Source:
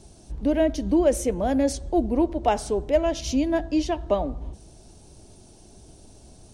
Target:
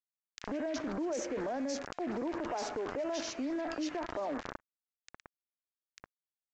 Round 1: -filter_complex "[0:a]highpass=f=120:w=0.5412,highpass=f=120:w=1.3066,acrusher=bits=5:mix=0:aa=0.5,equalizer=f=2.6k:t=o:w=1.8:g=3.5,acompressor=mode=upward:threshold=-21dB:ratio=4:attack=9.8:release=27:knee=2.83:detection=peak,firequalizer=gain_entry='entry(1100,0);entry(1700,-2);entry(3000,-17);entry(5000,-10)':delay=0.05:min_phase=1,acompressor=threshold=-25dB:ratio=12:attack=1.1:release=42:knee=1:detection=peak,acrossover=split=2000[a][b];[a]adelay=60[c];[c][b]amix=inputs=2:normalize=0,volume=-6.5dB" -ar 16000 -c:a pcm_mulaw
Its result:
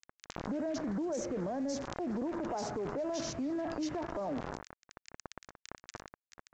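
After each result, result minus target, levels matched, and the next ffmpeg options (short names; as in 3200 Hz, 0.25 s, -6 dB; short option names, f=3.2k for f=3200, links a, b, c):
125 Hz band +7.5 dB; 2000 Hz band -3.5 dB
-filter_complex "[0:a]highpass=f=250:w=0.5412,highpass=f=250:w=1.3066,acrusher=bits=5:mix=0:aa=0.5,equalizer=f=2.6k:t=o:w=1.8:g=3.5,acompressor=mode=upward:threshold=-21dB:ratio=4:attack=9.8:release=27:knee=2.83:detection=peak,firequalizer=gain_entry='entry(1100,0);entry(1700,-2);entry(3000,-17);entry(5000,-10)':delay=0.05:min_phase=1,acompressor=threshold=-25dB:ratio=12:attack=1.1:release=42:knee=1:detection=peak,acrossover=split=2000[a][b];[a]adelay=60[c];[c][b]amix=inputs=2:normalize=0,volume=-6.5dB" -ar 16000 -c:a pcm_mulaw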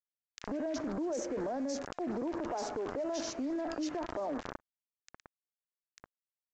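2000 Hz band -4.0 dB
-filter_complex "[0:a]highpass=f=250:w=0.5412,highpass=f=250:w=1.3066,acrusher=bits=5:mix=0:aa=0.5,equalizer=f=2.6k:t=o:w=1.8:g=13,acompressor=mode=upward:threshold=-21dB:ratio=4:attack=9.8:release=27:knee=2.83:detection=peak,firequalizer=gain_entry='entry(1100,0);entry(1700,-2);entry(3000,-17);entry(5000,-10)':delay=0.05:min_phase=1,acompressor=threshold=-25dB:ratio=12:attack=1.1:release=42:knee=1:detection=peak,acrossover=split=2000[a][b];[a]adelay=60[c];[c][b]amix=inputs=2:normalize=0,volume=-6.5dB" -ar 16000 -c:a pcm_mulaw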